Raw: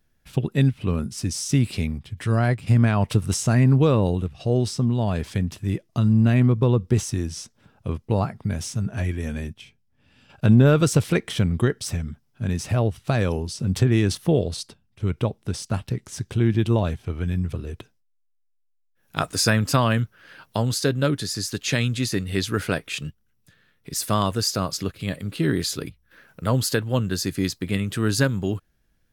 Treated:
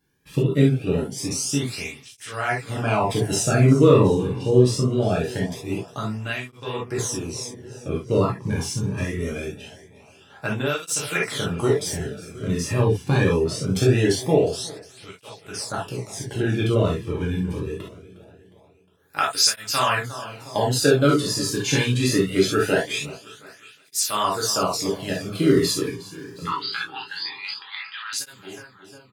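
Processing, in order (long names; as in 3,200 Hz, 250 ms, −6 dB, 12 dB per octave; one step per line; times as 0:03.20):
fade-out on the ending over 1.53 s
0:26.45–0:28.13: linear-phase brick-wall band-pass 770–5,000 Hz
repeating echo 359 ms, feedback 59%, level −18 dB
reverb whose tail is shaped and stops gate 90 ms flat, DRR −4.5 dB
through-zero flanger with one copy inverted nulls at 0.23 Hz, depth 1.6 ms
level +1 dB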